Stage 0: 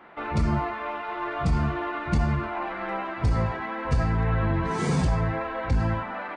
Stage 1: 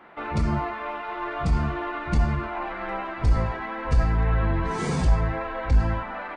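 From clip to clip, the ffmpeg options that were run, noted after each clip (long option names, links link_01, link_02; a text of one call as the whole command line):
ffmpeg -i in.wav -af "asubboost=boost=5:cutoff=51" out.wav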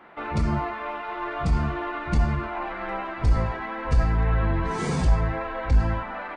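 ffmpeg -i in.wav -af anull out.wav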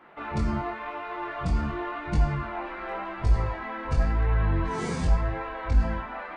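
ffmpeg -i in.wav -af "flanger=delay=20:depth=3.5:speed=0.91" out.wav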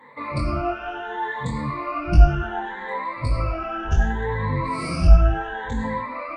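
ffmpeg -i in.wav -af "afftfilt=real='re*pow(10,23/40*sin(2*PI*(1*log(max(b,1)*sr/1024/100)/log(2)-(0.68)*(pts-256)/sr)))':imag='im*pow(10,23/40*sin(2*PI*(1*log(max(b,1)*sr/1024/100)/log(2)-(0.68)*(pts-256)/sr)))':win_size=1024:overlap=0.75" out.wav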